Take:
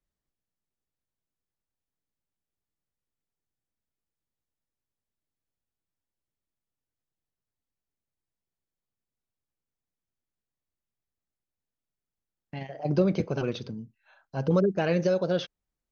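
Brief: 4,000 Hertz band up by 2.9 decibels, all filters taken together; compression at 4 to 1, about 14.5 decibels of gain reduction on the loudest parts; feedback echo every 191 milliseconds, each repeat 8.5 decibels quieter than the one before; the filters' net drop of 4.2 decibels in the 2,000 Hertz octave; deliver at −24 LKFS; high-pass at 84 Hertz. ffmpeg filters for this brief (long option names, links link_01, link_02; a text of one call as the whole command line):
ffmpeg -i in.wav -af "highpass=84,equalizer=frequency=2000:width_type=o:gain=-7.5,equalizer=frequency=4000:width_type=o:gain=6,acompressor=threshold=-37dB:ratio=4,aecho=1:1:191|382|573|764:0.376|0.143|0.0543|0.0206,volume=16dB" out.wav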